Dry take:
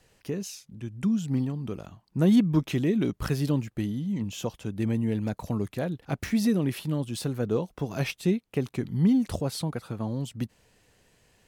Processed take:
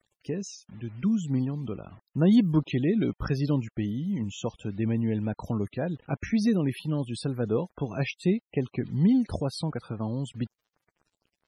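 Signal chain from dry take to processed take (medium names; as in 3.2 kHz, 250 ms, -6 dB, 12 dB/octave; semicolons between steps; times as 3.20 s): bit crusher 9-bit; loudest bins only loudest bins 64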